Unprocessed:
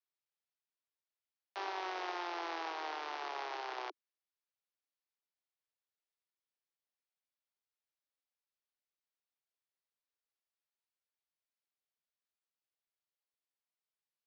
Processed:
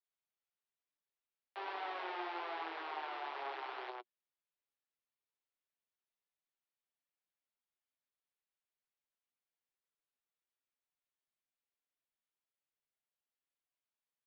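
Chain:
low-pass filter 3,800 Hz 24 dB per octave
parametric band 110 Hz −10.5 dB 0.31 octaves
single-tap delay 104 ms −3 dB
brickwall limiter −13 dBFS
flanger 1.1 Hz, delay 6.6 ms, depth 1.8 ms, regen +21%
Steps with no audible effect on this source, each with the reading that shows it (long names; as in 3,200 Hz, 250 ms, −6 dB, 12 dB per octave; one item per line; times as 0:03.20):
parametric band 110 Hz: nothing at its input below 270 Hz
brickwall limiter −13 dBFS: peak of its input −26.5 dBFS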